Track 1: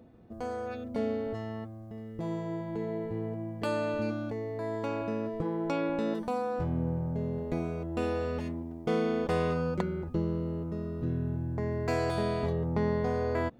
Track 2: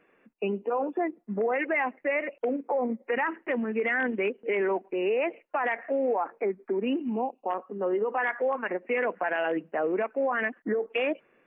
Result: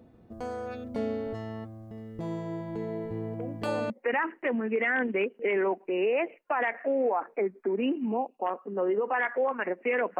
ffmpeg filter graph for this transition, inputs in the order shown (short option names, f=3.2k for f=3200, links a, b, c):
-filter_complex "[1:a]asplit=2[a][b];[0:a]apad=whole_dur=10.19,atrim=end=10.19,atrim=end=3.902[c];[b]atrim=start=2.938:end=9.23[d];[a]atrim=start=2.4:end=2.94,asetpts=PTS-STARTPTS,volume=-11.5dB,afade=t=in:d=0.004:c=hsin,afade=t=out:st=0.536:d=0.004:c=hsin,adelay=3360[e];[c][d]acrossfade=d=0.004:c1=hsin:c2=hsin[f];[f][e]amix=inputs=2:normalize=0"